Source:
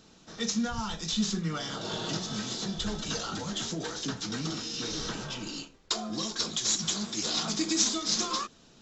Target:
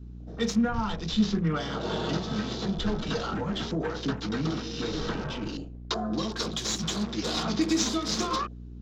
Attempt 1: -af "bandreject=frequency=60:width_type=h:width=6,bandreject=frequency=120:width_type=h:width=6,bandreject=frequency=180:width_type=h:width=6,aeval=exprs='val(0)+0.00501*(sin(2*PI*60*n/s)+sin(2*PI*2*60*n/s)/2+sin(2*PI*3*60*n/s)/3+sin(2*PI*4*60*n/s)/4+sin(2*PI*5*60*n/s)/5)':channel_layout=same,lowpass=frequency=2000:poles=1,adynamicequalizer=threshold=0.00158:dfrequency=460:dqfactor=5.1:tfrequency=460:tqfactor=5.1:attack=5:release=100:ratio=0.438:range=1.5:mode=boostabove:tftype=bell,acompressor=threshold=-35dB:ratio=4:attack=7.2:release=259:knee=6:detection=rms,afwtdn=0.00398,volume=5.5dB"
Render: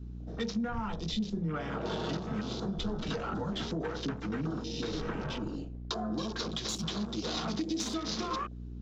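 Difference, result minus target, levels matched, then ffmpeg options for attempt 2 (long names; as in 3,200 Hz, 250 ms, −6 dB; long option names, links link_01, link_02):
downward compressor: peak gain reduction +10.5 dB
-af "bandreject=frequency=60:width_type=h:width=6,bandreject=frequency=120:width_type=h:width=6,bandreject=frequency=180:width_type=h:width=6,aeval=exprs='val(0)+0.00501*(sin(2*PI*60*n/s)+sin(2*PI*2*60*n/s)/2+sin(2*PI*3*60*n/s)/3+sin(2*PI*4*60*n/s)/4+sin(2*PI*5*60*n/s)/5)':channel_layout=same,lowpass=frequency=2000:poles=1,adynamicequalizer=threshold=0.00158:dfrequency=460:dqfactor=5.1:tfrequency=460:tqfactor=5.1:attack=5:release=100:ratio=0.438:range=1.5:mode=boostabove:tftype=bell,afwtdn=0.00398,volume=5.5dB"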